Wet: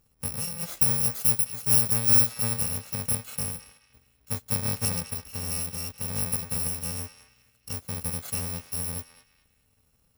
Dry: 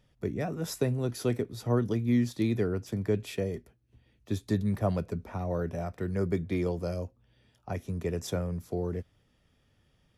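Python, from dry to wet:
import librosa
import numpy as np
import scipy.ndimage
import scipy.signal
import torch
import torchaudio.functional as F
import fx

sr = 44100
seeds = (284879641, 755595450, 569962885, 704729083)

y = fx.bit_reversed(x, sr, seeds[0], block=128)
y = fx.high_shelf(y, sr, hz=8200.0, db=7.5, at=(0.81, 2.27))
y = fx.echo_banded(y, sr, ms=212, feedback_pct=40, hz=2500.0, wet_db=-10.0)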